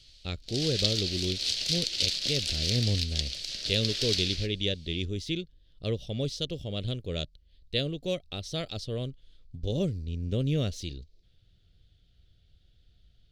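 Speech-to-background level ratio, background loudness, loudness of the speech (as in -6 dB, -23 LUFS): -3.5 dB, -29.0 LUFS, -32.5 LUFS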